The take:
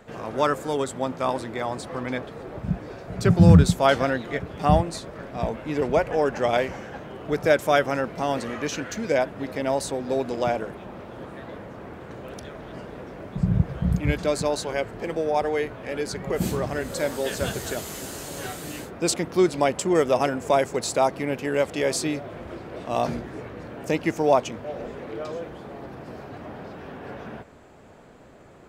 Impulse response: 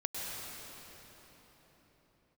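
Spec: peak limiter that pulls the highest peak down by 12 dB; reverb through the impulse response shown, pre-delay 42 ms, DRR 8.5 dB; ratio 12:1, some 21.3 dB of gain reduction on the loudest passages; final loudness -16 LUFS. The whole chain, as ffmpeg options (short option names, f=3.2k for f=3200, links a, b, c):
-filter_complex "[0:a]acompressor=threshold=-30dB:ratio=12,alimiter=level_in=6dB:limit=-24dB:level=0:latency=1,volume=-6dB,asplit=2[a][b];[1:a]atrim=start_sample=2205,adelay=42[c];[b][c]afir=irnorm=-1:irlink=0,volume=-12.5dB[d];[a][d]amix=inputs=2:normalize=0,volume=23dB"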